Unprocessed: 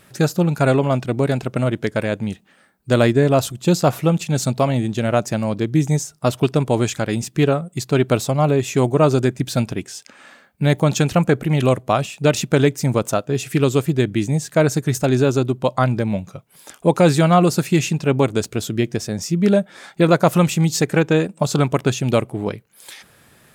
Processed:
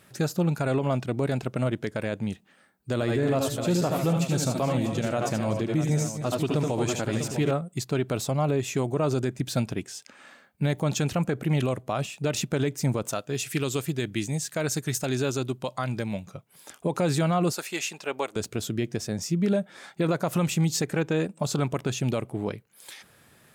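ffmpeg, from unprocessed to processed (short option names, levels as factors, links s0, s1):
-filter_complex "[0:a]asettb=1/sr,asplit=3[s0][s1][s2];[s0]atrim=end=2.934[s3];[s1]atrim=start=2.93:end=7.51,asetpts=PTS-STARTPTS,afade=t=in:d=0.004:c=qsin,afade=t=out:st=4.576:d=0.004:c=qsin,aecho=1:1:74|85|246|279|644|883:0.447|0.376|0.141|0.15|0.237|0.141,atrim=end_sample=201978[s4];[s2]atrim=start=7.506[s5];[s3][s4]acrossfade=d=0.004:c1=hsin:c2=qsin[s6];[s6][s5]acrossfade=d=0.004:c1=qsin:c2=hsin,asettb=1/sr,asplit=3[s7][s8][s9];[s7]atrim=end=13.104[s10];[s8]atrim=start=13.1:end=16.25,asetpts=PTS-STARTPTS,afade=t=in:d=0.004:c=qsin,afade=t=out:st=3.146:d=0.004:c=qsin,tiltshelf=f=1500:g=-4.5[s11];[s9]atrim=start=16.246[s12];[s10][s11]acrossfade=d=0.004:c1=hsin:c2=qsin[s13];[s13][s12]acrossfade=d=0.004:c1=qsin:c2=hsin,asettb=1/sr,asplit=3[s14][s15][s16];[s14]atrim=end=17.524[s17];[s15]atrim=start=17.52:end=18.36,asetpts=PTS-STARTPTS,afade=t=in:d=0.004:c=qsin,afade=t=out:st=0.836:d=0.004:c=qsin,highpass=610[s18];[s16]atrim=start=18.356[s19];[s17][s18]acrossfade=d=0.004:c1=hsin:c2=qsin[s20];[s20][s19]acrossfade=d=0.004:c1=qsin:c2=hsin,highpass=48,alimiter=limit=0.282:level=0:latency=1:release=58,volume=0.531"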